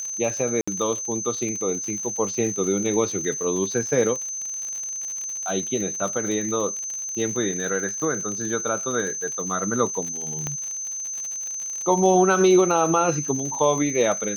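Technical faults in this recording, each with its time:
crackle 77/s -29 dBFS
tone 6200 Hz -28 dBFS
0.61–0.68 gap 65 ms
10.47 pop -14 dBFS

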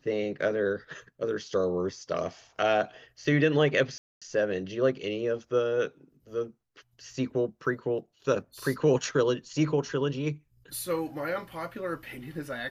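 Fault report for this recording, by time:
3.98–4.22 gap 0.236 s

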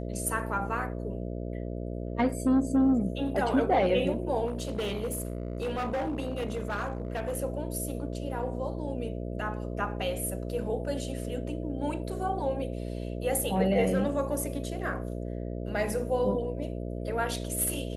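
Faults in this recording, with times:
buzz 60 Hz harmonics 11 -35 dBFS
4.46–7.37 clipped -27 dBFS

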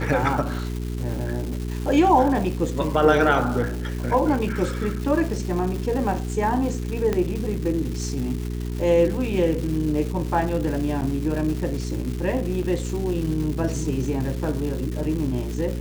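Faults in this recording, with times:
crackle 500/s -30 dBFS
hum 60 Hz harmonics 7 -28 dBFS
7.13 pop -11 dBFS
11.01–11.02 gap 8.3 ms
12.63–12.64 gap 5.8 ms

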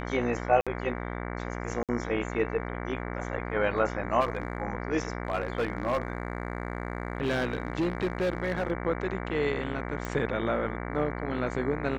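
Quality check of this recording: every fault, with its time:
buzz 60 Hz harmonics 38 -35 dBFS
0.61–0.67 gap 56 ms
1.83–1.89 gap 57 ms
4.2–4.62 clipped -22.5 dBFS
5.23–8.72 clipped -22.5 dBFS
10.05 pop

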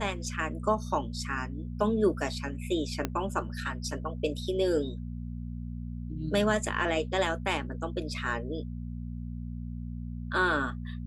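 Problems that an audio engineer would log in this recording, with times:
hum 60 Hz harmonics 4 -37 dBFS
3.05 pop -14 dBFS

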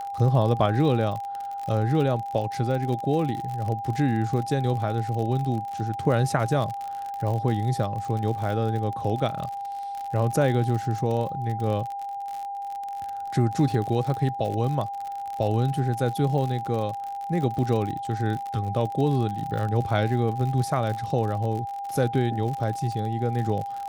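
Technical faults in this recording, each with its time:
crackle 56/s -30 dBFS
tone 800 Hz -30 dBFS

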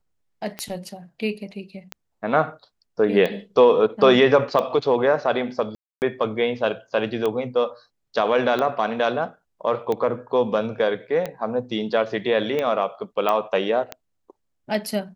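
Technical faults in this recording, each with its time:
tick 45 rpm -13 dBFS
5.75–6.02 gap 0.269 s
13.29 pop -10 dBFS

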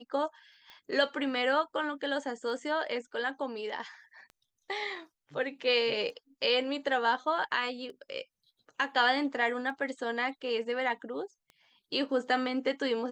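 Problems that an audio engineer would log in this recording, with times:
tick 33 1/3 rpm -34 dBFS

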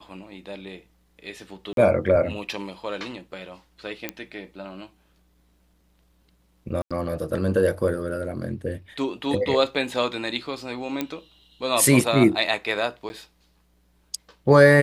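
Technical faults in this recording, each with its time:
1.73–1.77 gap 42 ms
4.09 pop -12 dBFS
6.82–6.91 gap 86 ms
11.01 pop -11 dBFS
13.09–13.1 gap 10 ms

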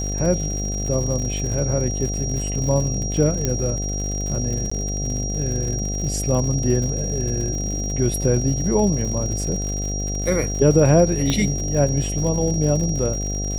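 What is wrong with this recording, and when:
buzz 50 Hz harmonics 15 -26 dBFS
crackle 100/s -28 dBFS
tone 5700 Hz -28 dBFS
3.45 pop -8 dBFS
4.7–4.71 gap
11.3 pop -8 dBFS

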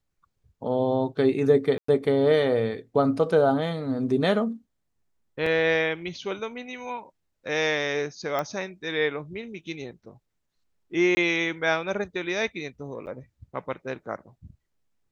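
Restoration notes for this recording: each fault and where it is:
1.78–1.88 gap 0.104 s
5.46 gap 4.3 ms
8.39 pop -15 dBFS
11.15–11.17 gap 20 ms
13.06–13.07 gap 9.5 ms

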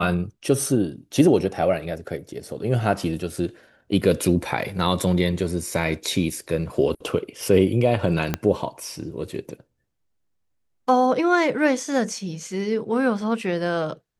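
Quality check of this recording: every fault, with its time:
8.34 pop -8 dBFS

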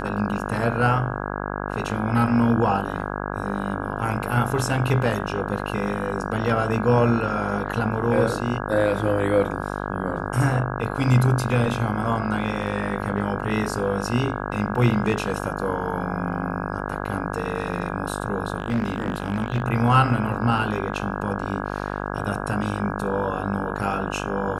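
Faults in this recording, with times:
buzz 50 Hz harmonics 33 -29 dBFS
18.58–19.62 clipped -18 dBFS

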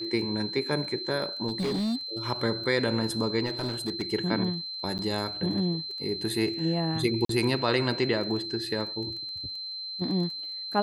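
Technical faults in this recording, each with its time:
crackle 14/s -37 dBFS
tone 4100 Hz -34 dBFS
1.47–2.27 clipped -25 dBFS
3.45–4.03 clipped -25 dBFS
4.98–4.99 gap 9.2 ms
7.25–7.29 gap 43 ms

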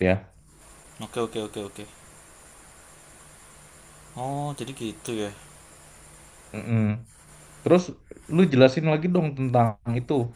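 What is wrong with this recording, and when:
5.07 pop

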